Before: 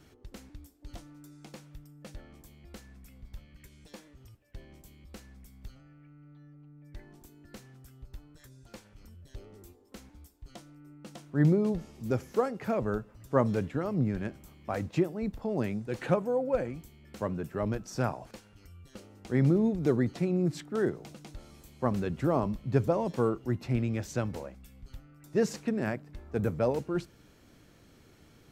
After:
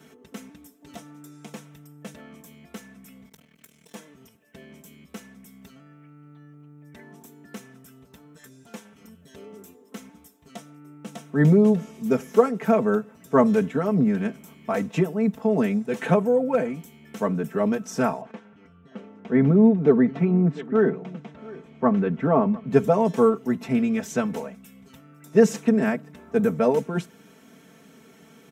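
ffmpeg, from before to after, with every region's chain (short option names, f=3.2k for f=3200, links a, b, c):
-filter_complex "[0:a]asettb=1/sr,asplit=3[a][b][c];[a]atrim=end=3.294[d];[b]atrim=start=3.29:end=3.95,asetpts=PTS-STARTPTS,afade=t=in:d=0.004:c=qsin,afade=t=out:st=0.656:d=0.004:c=qsin,highshelf=f=4.9k:g=8.5,aeval=exprs='max(val(0),0)':c=same,tremolo=f=40:d=0.889[e];[c]atrim=start=3.946[f];[d][e]acrossfade=d=0.004:c1=hsin:c2=qsin[g];[g][f]acrossfade=d=0.004:c1=qsin:c2=hsin,asettb=1/sr,asplit=3[h][i][j];[h]atrim=end=18.214[k];[i]atrim=start=18.21:end=22.71,asetpts=PTS-STARTPTS,afade=t=in:d=0.004:c=qsin,afade=t=out:st=4.496:d=0.004:c=qsin,lowpass=2.2k,aecho=1:1:700:0.1,atrim=end_sample=198450[l];[j]atrim=start=22.706[m];[k][l]acrossfade=d=0.004:c1=hsin:c2=qsin[n];[n][m]acrossfade=d=0.004:c1=qsin:c2=hsin,highpass=f=120:w=0.5412,highpass=f=120:w=1.3066,equalizer=f=4.5k:w=4.8:g=-10.5,aecho=1:1:4.5:0.88,volume=6dB"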